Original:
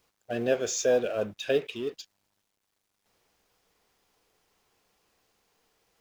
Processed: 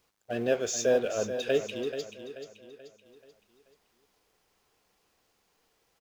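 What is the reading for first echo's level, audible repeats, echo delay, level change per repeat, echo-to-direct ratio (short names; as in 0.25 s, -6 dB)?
-10.0 dB, 4, 0.433 s, -7.5 dB, -9.0 dB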